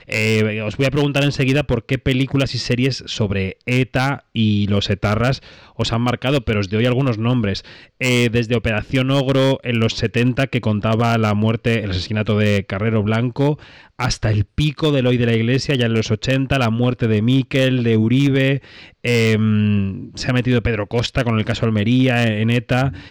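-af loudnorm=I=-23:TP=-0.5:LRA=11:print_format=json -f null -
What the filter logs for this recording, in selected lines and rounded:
"input_i" : "-18.2",
"input_tp" : "-7.5",
"input_lra" : "2.0",
"input_thresh" : "-28.3",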